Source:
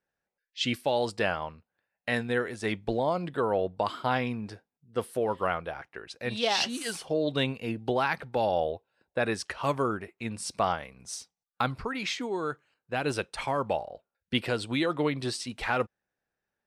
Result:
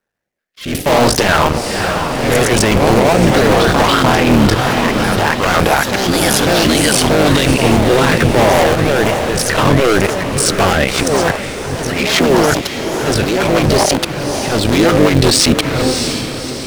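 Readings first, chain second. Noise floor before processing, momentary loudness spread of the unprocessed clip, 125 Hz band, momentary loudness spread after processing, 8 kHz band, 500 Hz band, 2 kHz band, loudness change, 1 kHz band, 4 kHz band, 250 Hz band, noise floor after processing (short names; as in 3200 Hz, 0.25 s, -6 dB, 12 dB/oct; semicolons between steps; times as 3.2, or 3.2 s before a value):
under -85 dBFS, 10 LU, +21.5 dB, 7 LU, +24.0 dB, +17.0 dB, +18.0 dB, +18.0 dB, +16.5 dB, +18.5 dB, +20.0 dB, -24 dBFS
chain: cycle switcher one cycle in 3, muted; de-hum 257.3 Hz, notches 3; sample leveller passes 5; in parallel at 0 dB: negative-ratio compressor -25 dBFS, ratio -0.5; on the sum: auto swell 0.765 s; rotary speaker horn 0.65 Hz, later 5.5 Hz, at 10.48; on a send: diffused feedback echo 0.602 s, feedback 46%, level -11 dB; on the sum: echoes that change speed 0.141 s, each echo +2 st, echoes 2, each echo -6 dB; maximiser +14 dB; gain -1 dB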